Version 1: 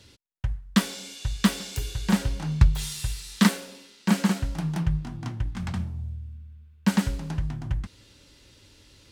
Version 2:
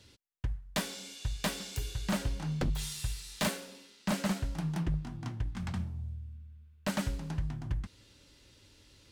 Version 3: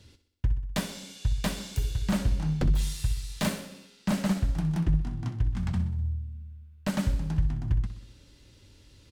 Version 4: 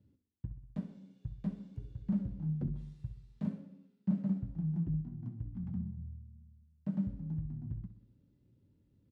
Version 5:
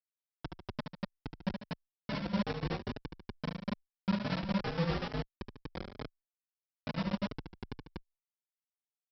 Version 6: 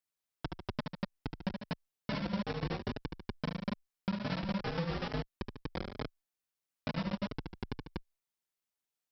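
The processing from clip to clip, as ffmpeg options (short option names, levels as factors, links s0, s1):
-af "aeval=exprs='0.126*(abs(mod(val(0)/0.126+3,4)-2)-1)':c=same,volume=0.531"
-af "lowshelf=f=250:g=8.5,aecho=1:1:63|126|189|252|315|378:0.224|0.128|0.0727|0.0415|0.0236|0.0135"
-af "flanger=delay=3.4:depth=5.1:regen=77:speed=0.54:shape=sinusoidal,bandpass=f=180:t=q:w=1.7:csg=0"
-filter_complex "[0:a]aresample=11025,acrusher=bits=4:mix=0:aa=0.000001,aresample=44100,aecho=1:1:72.89|145.8|242:0.501|0.251|0.891,asplit=2[s0][s1];[s1]adelay=4.1,afreqshift=2.3[s2];[s0][s2]amix=inputs=2:normalize=1"
-af "acompressor=threshold=0.0158:ratio=6,volume=1.68"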